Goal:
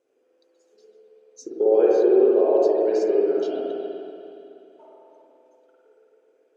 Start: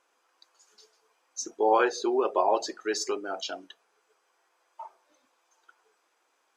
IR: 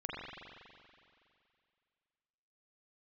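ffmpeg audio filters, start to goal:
-filter_complex "[0:a]lowshelf=frequency=690:width_type=q:width=3:gain=13,asettb=1/sr,asplit=3[link_01][link_02][link_03];[link_01]atrim=end=1.444[link_04];[link_02]atrim=start=1.44:end=3.55,asetpts=PTS-STARTPTS,afade=type=in:duration=0.004:curve=qsin,afade=type=out:start_time=2.106:duration=0.004:curve=qsin,acrossover=split=310|6500[link_05][link_06][link_07];[link_05]acompressor=threshold=-28dB:ratio=4[link_08];[link_06]acompressor=threshold=-9dB:ratio=4[link_09];[link_07]acompressor=threshold=-51dB:ratio=4[link_10];[link_08][link_09][link_10]amix=inputs=3:normalize=0[link_11];[link_03]atrim=start=3.546[link_12];[link_04][link_11]acrossfade=duration=0.004:curve1=hsin:curve2=qsin[link_13];[link_13][link_12]acrossfade=duration=0.004:curve1=qsin:curve2=hsin,highpass=frequency=120:poles=1[link_14];[1:a]atrim=start_sample=2205,asetrate=37485,aresample=44100[link_15];[link_14][link_15]afir=irnorm=-1:irlink=0,volume=-7.5dB"

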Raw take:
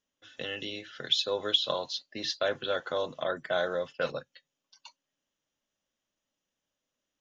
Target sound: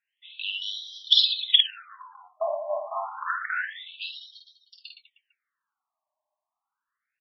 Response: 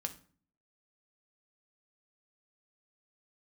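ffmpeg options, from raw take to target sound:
-af "aecho=1:1:50|115|199.5|309.4|452.2:0.631|0.398|0.251|0.158|0.1,aeval=exprs='(mod(4.73*val(0)+1,2)-1)/4.73':channel_layout=same,afftfilt=real='re*between(b*sr/1024,810*pow(4400/810,0.5+0.5*sin(2*PI*0.28*pts/sr))/1.41,810*pow(4400/810,0.5+0.5*sin(2*PI*0.28*pts/sr))*1.41)':imag='im*between(b*sr/1024,810*pow(4400/810,0.5+0.5*sin(2*PI*0.28*pts/sr))/1.41,810*pow(4400/810,0.5+0.5*sin(2*PI*0.28*pts/sr))*1.41)':win_size=1024:overlap=0.75,volume=7.5dB"

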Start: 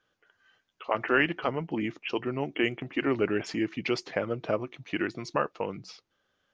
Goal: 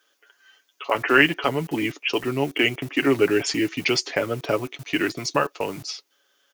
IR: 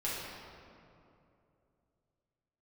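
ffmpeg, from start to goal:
-filter_complex "[0:a]equalizer=frequency=350:width_type=o:width=0.39:gain=4.5,bandreject=frequency=4000:width=30,aecho=1:1:7.1:0.49,acrossover=split=260|3000[link_01][link_02][link_03];[link_01]aeval=exprs='val(0)*gte(abs(val(0)),0.00501)':channel_layout=same[link_04];[link_04][link_02][link_03]amix=inputs=3:normalize=0,crystalizer=i=4:c=0,volume=3.5dB"

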